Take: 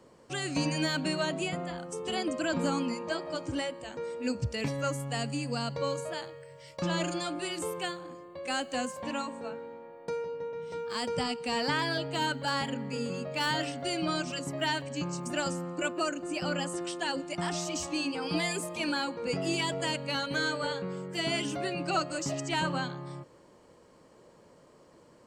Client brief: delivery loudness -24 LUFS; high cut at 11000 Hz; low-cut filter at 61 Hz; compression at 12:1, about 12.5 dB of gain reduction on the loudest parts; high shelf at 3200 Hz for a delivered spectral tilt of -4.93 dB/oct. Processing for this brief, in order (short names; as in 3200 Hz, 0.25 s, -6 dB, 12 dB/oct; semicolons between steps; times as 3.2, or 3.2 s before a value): HPF 61 Hz; LPF 11000 Hz; high shelf 3200 Hz -6 dB; compressor 12:1, threshold -39 dBFS; gain +19 dB